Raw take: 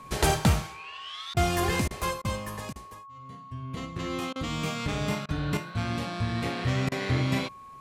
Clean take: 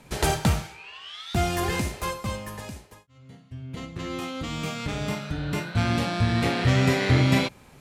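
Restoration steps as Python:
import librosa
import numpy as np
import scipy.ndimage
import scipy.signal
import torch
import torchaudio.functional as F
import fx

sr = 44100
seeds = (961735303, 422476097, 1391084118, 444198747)

y = fx.notch(x, sr, hz=1100.0, q=30.0)
y = fx.fix_interpolate(y, sr, at_s=(1.34, 1.88, 2.22, 2.73, 4.33, 5.26, 6.89), length_ms=26.0)
y = fx.gain(y, sr, db=fx.steps((0.0, 0.0), (5.57, 6.5)))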